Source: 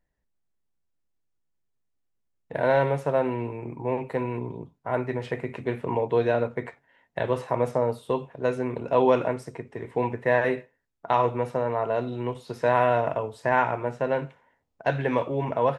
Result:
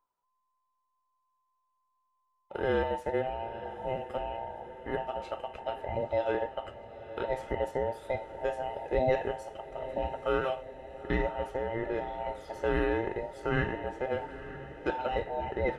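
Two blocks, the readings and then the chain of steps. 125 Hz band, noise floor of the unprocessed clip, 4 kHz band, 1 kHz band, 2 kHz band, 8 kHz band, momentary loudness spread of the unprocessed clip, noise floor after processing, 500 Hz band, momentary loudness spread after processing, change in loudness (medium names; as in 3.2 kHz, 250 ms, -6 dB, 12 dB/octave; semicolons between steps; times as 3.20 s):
-8.5 dB, -75 dBFS, -1.5 dB, -7.5 dB, -6.0 dB, no reading, 11 LU, -79 dBFS, -6.5 dB, 11 LU, -7.0 dB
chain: every band turned upside down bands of 1 kHz; echo that smears into a reverb 909 ms, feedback 62%, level -13.5 dB; trim -7 dB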